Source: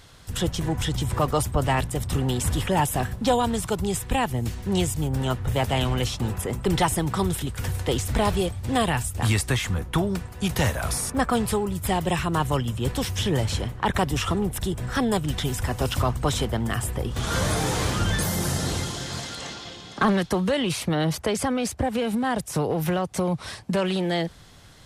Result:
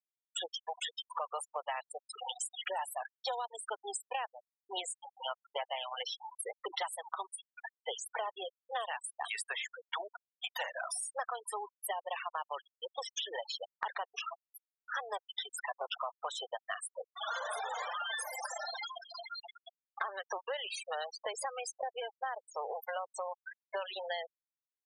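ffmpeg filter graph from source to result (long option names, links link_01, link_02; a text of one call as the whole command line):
ffmpeg -i in.wav -filter_complex "[0:a]asettb=1/sr,asplit=3[link_01][link_02][link_03];[link_01]atrim=end=14.214[link_04];[link_02]atrim=start=14.21:end=14.87,asetpts=PTS-STARTPTS,afade=type=in:duration=0.004:curve=qsin,afade=type=out:start_time=0.656:duration=0.004:curve=qsin,equalizer=frequency=6300:width_type=o:width=0.85:gain=-11.5,asoftclip=type=hard:threshold=-22.5dB,acompressor=threshold=-28dB:ratio=8:attack=3.2:release=140:knee=1:detection=peak[link_05];[link_03]atrim=start=14.866[link_06];[link_04][link_05]acrossfade=duration=0.004:curve1=hsin:curve2=qsin[link_07];[link_07][link_06]acrossfade=duration=0.004:curve1=qsin:curve2=hsin,highpass=frequency=610:width=0.5412,highpass=frequency=610:width=1.3066,afftfilt=real='re*gte(hypot(re,im),0.0631)':imag='im*gte(hypot(re,im),0.0631)':win_size=1024:overlap=0.75,acompressor=threshold=-37dB:ratio=6,volume=1.5dB" out.wav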